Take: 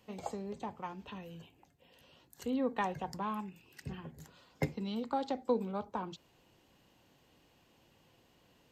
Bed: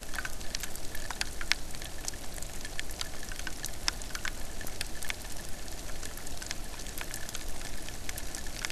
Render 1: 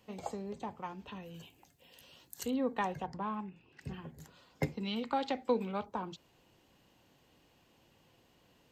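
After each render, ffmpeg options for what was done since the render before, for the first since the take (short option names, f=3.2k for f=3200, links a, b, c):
-filter_complex "[0:a]asettb=1/sr,asplit=3[a][b][c];[a]atrim=end=1.344[d];[b]atrim=start=1.34:end=2.51,asetpts=PTS-STARTPTS,afade=t=in:d=0.004:c=qsin,afade=t=out:st=1.166:d=0.004:c=qsin,highshelf=f=3.1k:g=11[e];[c]atrim=start=2.506[f];[d][e]acrossfade=d=0.004:c1=hsin:c2=qsin[g];[g][f]acrossfade=d=0.004:c1=qsin:c2=hsin,asettb=1/sr,asplit=3[h][i][j];[h]atrim=end=3.064[k];[i]atrim=start=3.06:end=3.81,asetpts=PTS-STARTPTS,afade=t=in:d=0.004:c=qsin,afade=t=out:st=0.746:d=0.004:c=qsin,adynamicsmooth=sensitivity=1.5:basefreq=3.3k[l];[j]atrim=start=3.806[m];[k][l]acrossfade=d=0.004:c1=hsin:c2=qsin[n];[n][m]acrossfade=d=0.004:c1=qsin:c2=hsin,asettb=1/sr,asplit=3[o][p][q];[o]atrim=end=4.834[r];[p]atrim=start=4.83:end=5.86,asetpts=PTS-STARTPTS,afade=t=in:d=0.004:c=qsin,afade=t=out:st=1.026:d=0.004:c=qsin,equalizer=f=2.4k:w=1.1:g=11[s];[q]atrim=start=5.856[t];[r][s]acrossfade=d=0.004:c1=hsin:c2=qsin[u];[u][t]acrossfade=d=0.004:c1=qsin:c2=hsin"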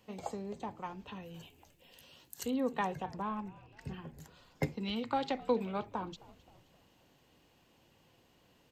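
-filter_complex "[0:a]asplit=5[a][b][c][d][e];[b]adelay=263,afreqshift=-87,volume=-21dB[f];[c]adelay=526,afreqshift=-174,volume=-26.5dB[g];[d]adelay=789,afreqshift=-261,volume=-32dB[h];[e]adelay=1052,afreqshift=-348,volume=-37.5dB[i];[a][f][g][h][i]amix=inputs=5:normalize=0"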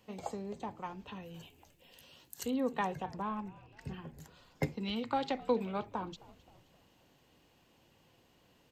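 -af anull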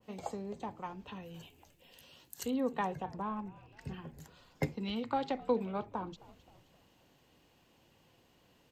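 -af "adynamicequalizer=threshold=0.00282:dfrequency=1600:dqfactor=0.7:tfrequency=1600:tqfactor=0.7:attack=5:release=100:ratio=0.375:range=3:mode=cutabove:tftype=highshelf"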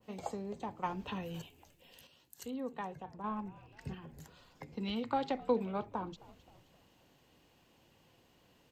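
-filter_complex "[0:a]asettb=1/sr,asplit=3[a][b][c];[a]atrim=end=0.834[d];[b]atrim=start=0.83:end=1.42,asetpts=PTS-STARTPTS,afade=t=in:d=0.004:c=qsin,afade=t=out:st=0.586:d=0.004:c=qsin,acontrast=47[e];[c]atrim=start=1.416[f];[d][e]acrossfade=d=0.004:c1=hsin:c2=qsin[g];[g][f]acrossfade=d=0.004:c1=qsin:c2=hsin,asettb=1/sr,asplit=3[h][i][j];[h]atrim=end=3.944[k];[i]atrim=start=3.94:end=4.73,asetpts=PTS-STARTPTS,afade=t=in:d=0.004:c=qsin,afade=t=out:st=0.786:d=0.004:c=qsin,acompressor=threshold=-45dB:ratio=6:attack=3.2:release=140:knee=1:detection=peak[l];[j]atrim=start=4.726[m];[k][l]acrossfade=d=0.004:c1=hsin:c2=qsin[n];[n][m]acrossfade=d=0.004:c1=qsin:c2=hsin,asplit=3[o][p][q];[o]atrim=end=2.072[r];[p]atrim=start=2.068:end=3.242,asetpts=PTS-STARTPTS,volume=-7dB[s];[q]atrim=start=3.238[t];[r][s]acrossfade=d=0.004:c1=hsin:c2=hsin[u];[u][t]acrossfade=d=0.004:c1=hsin:c2=hsin"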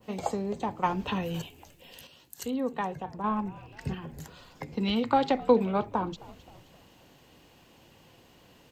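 -af "volume=9.5dB"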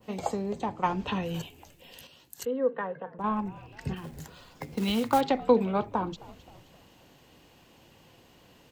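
-filter_complex "[0:a]asettb=1/sr,asplit=3[a][b][c];[a]atrim=end=0.614[d];[b]atrim=start=0.61:end=1.29,asetpts=PTS-STARTPTS,afade=t=in:d=0.004:c=qsin,afade=t=out:st=0.676:d=0.004:c=qsin,lowpass=9.8k[e];[c]atrim=start=1.286[f];[d][e]acrossfade=d=0.004:c1=hsin:c2=qsin[g];[g][f]acrossfade=d=0.004:c1=qsin:c2=hsin,asettb=1/sr,asplit=3[h][i][j];[h]atrim=end=2.454[k];[i]atrim=start=2.45:end=3.19,asetpts=PTS-STARTPTS,afade=t=in:d=0.004:c=qsin,afade=t=out:st=0.736:d=0.004:c=qsin,highpass=f=190:w=0.5412,highpass=f=190:w=1.3066,equalizer=f=230:t=q:w=4:g=-5,equalizer=f=350:t=q:w=4:g=-8,equalizer=f=500:t=q:w=4:g=10,equalizer=f=790:t=q:w=4:g=-9,equalizer=f=1.6k:t=q:w=4:g=6,equalizer=f=2.4k:t=q:w=4:g=-9,lowpass=f=2.6k:w=0.5412,lowpass=f=2.6k:w=1.3066[l];[j]atrim=start=3.186[m];[k][l]acrossfade=d=0.004:c1=hsin:c2=qsin[n];[n][m]acrossfade=d=0.004:c1=qsin:c2=hsin,asettb=1/sr,asplit=3[o][p][q];[o]atrim=end=3.964[r];[p]atrim=start=3.96:end=5.21,asetpts=PTS-STARTPTS,afade=t=in:d=0.004:c=qsin,afade=t=out:st=1.246:d=0.004:c=qsin,acrusher=bits=4:mode=log:mix=0:aa=0.000001[s];[q]atrim=start=5.206[t];[r][s]acrossfade=d=0.004:c1=hsin:c2=qsin[u];[u][t]acrossfade=d=0.004:c1=qsin:c2=hsin"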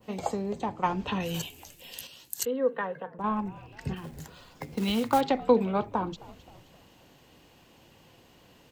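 -filter_complex "[0:a]asettb=1/sr,asplit=3[a][b][c];[a]atrim=end=1.204[d];[b]atrim=start=1.2:end=3.07,asetpts=PTS-STARTPTS,afade=t=in:d=0.004:c=qsin,afade=t=out:st=1.866:d=0.004:c=qsin,equalizer=f=11k:t=o:w=2.9:g=11[e];[c]atrim=start=3.066[f];[d][e]acrossfade=d=0.004:c1=hsin:c2=qsin[g];[g][f]acrossfade=d=0.004:c1=qsin:c2=hsin"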